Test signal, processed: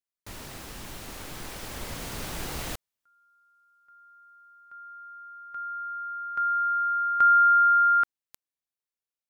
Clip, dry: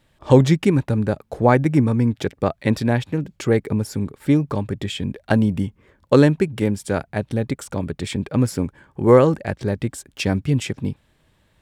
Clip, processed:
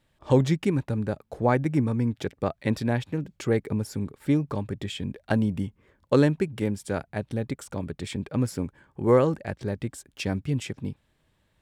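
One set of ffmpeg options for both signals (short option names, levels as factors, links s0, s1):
-af "dynaudnorm=f=200:g=21:m=2.66,volume=0.422"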